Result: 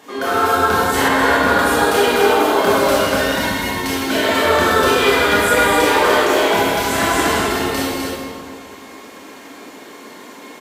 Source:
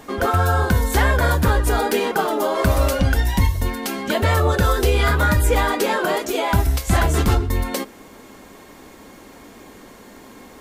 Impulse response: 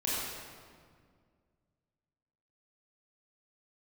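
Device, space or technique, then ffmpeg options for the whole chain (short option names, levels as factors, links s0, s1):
stadium PA: -filter_complex "[0:a]highpass=230,equalizer=f=3100:t=o:w=2.9:g=5,aecho=1:1:160.3|256.6:0.355|0.562[s0];[1:a]atrim=start_sample=2205[s1];[s0][s1]afir=irnorm=-1:irlink=0,asettb=1/sr,asplit=3[s2][s3][s4];[s2]atrim=end=1.084[s5];[s3]atrim=start=1.08:end=1.59,asetpts=PTS-STARTPTS,afade=t=in:d=0.004:c=qsin,afade=t=out:st=0.506:d=0.004:c=qsin,highshelf=f=5800:g=-7[s6];[s4]atrim=start=1.586[s7];[s5][s6]acrossfade=d=0.004:c1=hsin:c2=qsin[s8];[s8][s7]acrossfade=d=0.004:c1=qsin:c2=hsin,volume=0.596"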